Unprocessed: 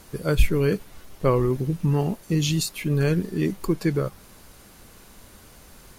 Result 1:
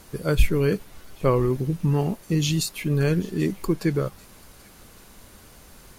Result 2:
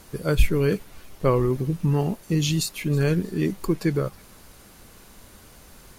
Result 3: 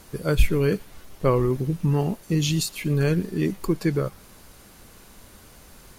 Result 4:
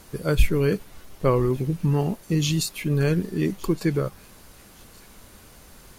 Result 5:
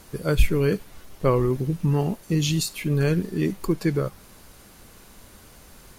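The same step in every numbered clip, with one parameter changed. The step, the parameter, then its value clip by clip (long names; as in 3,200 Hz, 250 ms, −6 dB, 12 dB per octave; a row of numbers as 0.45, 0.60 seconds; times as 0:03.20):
delay with a high-pass on its return, delay time: 787, 322, 118, 1,166, 70 milliseconds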